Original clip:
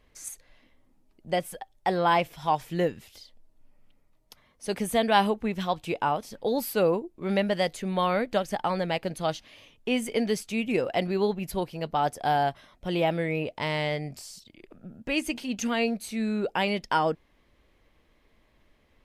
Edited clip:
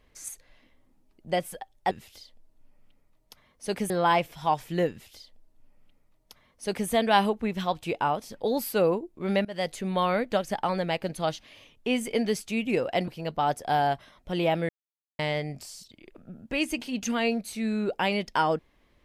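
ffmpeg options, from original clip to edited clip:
-filter_complex "[0:a]asplit=7[s0][s1][s2][s3][s4][s5][s6];[s0]atrim=end=1.912[s7];[s1]atrim=start=2.908:end=4.902[s8];[s2]atrim=start=1.908:end=7.46,asetpts=PTS-STARTPTS,afade=t=out:st=5.548:d=0.004:c=hsin:silence=0.0668344[s9];[s3]atrim=start=7.46:end=11.092,asetpts=PTS-STARTPTS,afade=t=in:d=0.26:silence=0.0668344[s10];[s4]atrim=start=11.638:end=13.25,asetpts=PTS-STARTPTS,afade=t=out:st=1.608:d=0.004:c=hsin[s11];[s5]atrim=start=13.25:end=13.75,asetpts=PTS-STARTPTS,volume=0[s12];[s6]atrim=start=13.75,asetpts=PTS-STARTPTS,afade=t=in:d=0.004:c=hsin[s13];[s7][s8]acrossfade=d=0.004:c1=hsin:c2=hsin[s14];[s9][s10]concat=n=2:v=0:a=1[s15];[s14][s15]acrossfade=d=0.004:c1=hsin:c2=hsin[s16];[s11][s12][s13]concat=n=3:v=0:a=1[s17];[s16][s17]acrossfade=d=0.004:c1=hsin:c2=hsin"

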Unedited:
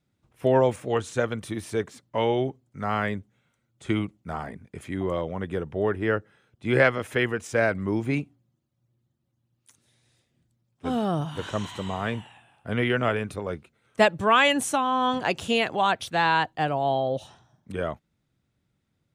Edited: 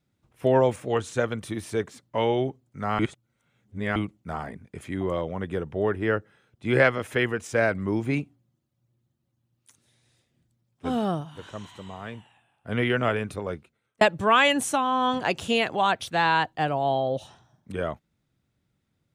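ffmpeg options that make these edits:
-filter_complex "[0:a]asplit=6[s0][s1][s2][s3][s4][s5];[s0]atrim=end=2.992[s6];[s1]atrim=start=2.988:end=3.962,asetpts=PTS-STARTPTS,areverse[s7];[s2]atrim=start=3.958:end=11.24,asetpts=PTS-STARTPTS,afade=t=out:st=7.142:d=0.14:silence=0.354813[s8];[s3]atrim=start=11.24:end=12.61,asetpts=PTS-STARTPTS,volume=0.355[s9];[s4]atrim=start=12.61:end=14.01,asetpts=PTS-STARTPTS,afade=t=in:d=0.14:silence=0.354813,afade=t=out:st=0.87:d=0.53[s10];[s5]atrim=start=14.01,asetpts=PTS-STARTPTS,afade=t=in:d=0.004:c=hsin[s11];[s6][s7]acrossfade=d=0.004:c1=hsin:c2=hsin[s12];[s8][s9][s10][s11]concat=n=4:v=0:a=1[s13];[s12][s13]acrossfade=d=0.004:c1=hsin:c2=hsin"

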